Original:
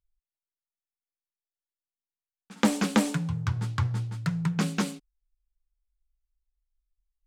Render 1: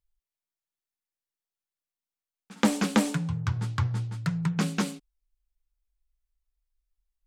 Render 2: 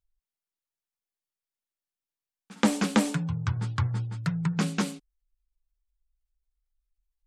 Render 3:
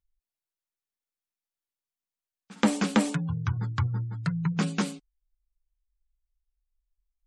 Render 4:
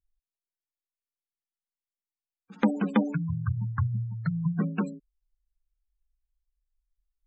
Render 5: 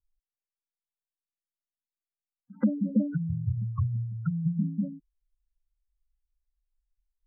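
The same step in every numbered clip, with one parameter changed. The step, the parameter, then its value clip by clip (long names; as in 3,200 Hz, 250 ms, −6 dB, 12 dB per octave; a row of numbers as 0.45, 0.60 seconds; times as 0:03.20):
gate on every frequency bin, under each frame's peak: −60, −45, −35, −20, −10 decibels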